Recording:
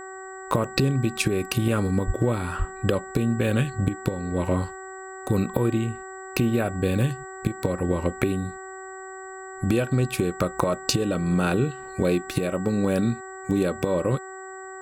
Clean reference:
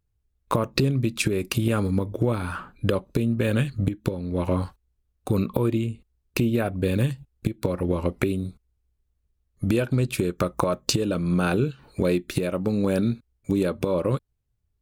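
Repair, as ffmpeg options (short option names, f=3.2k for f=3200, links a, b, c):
-filter_complex "[0:a]bandreject=f=379.8:t=h:w=4,bandreject=f=759.6:t=h:w=4,bandreject=f=1.1394k:t=h:w=4,bandreject=f=1.5192k:t=h:w=4,bandreject=f=1.899k:t=h:w=4,bandreject=f=7.7k:w=30,asplit=3[a][b][c];[a]afade=t=out:st=2.06:d=0.02[d];[b]highpass=f=140:w=0.5412,highpass=f=140:w=1.3066,afade=t=in:st=2.06:d=0.02,afade=t=out:st=2.18:d=0.02[e];[c]afade=t=in:st=2.18:d=0.02[f];[d][e][f]amix=inputs=3:normalize=0,asplit=3[g][h][i];[g]afade=t=out:st=2.58:d=0.02[j];[h]highpass=f=140:w=0.5412,highpass=f=140:w=1.3066,afade=t=in:st=2.58:d=0.02,afade=t=out:st=2.7:d=0.02[k];[i]afade=t=in:st=2.7:d=0.02[l];[j][k][l]amix=inputs=3:normalize=0"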